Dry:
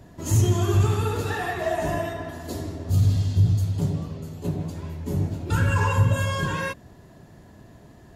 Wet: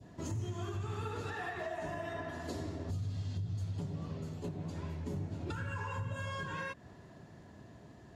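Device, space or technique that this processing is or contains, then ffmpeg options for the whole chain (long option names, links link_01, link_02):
podcast mastering chain: -af "adynamicequalizer=threshold=0.01:dfrequency=1500:dqfactor=0.76:tfrequency=1500:tqfactor=0.76:attack=5:release=100:ratio=0.375:range=2:mode=boostabove:tftype=bell,highpass=68,lowpass=7400,deesser=0.85,acompressor=threshold=-29dB:ratio=3,alimiter=level_in=0.5dB:limit=-24dB:level=0:latency=1:release=270,volume=-0.5dB,volume=-5dB" -ar 44100 -c:a libmp3lame -b:a 128k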